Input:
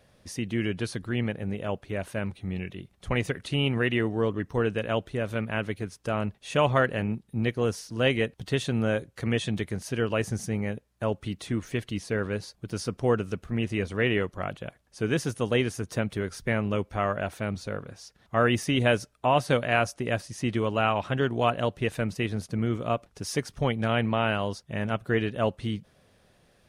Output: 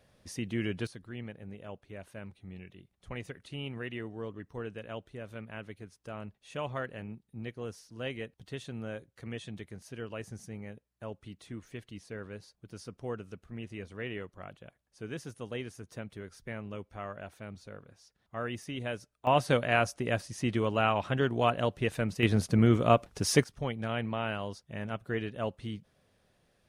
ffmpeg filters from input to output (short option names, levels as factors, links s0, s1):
-af "asetnsamples=n=441:p=0,asendcmd='0.87 volume volume -13.5dB;19.27 volume volume -2.5dB;22.23 volume volume 4.5dB;23.44 volume volume -8dB',volume=0.596"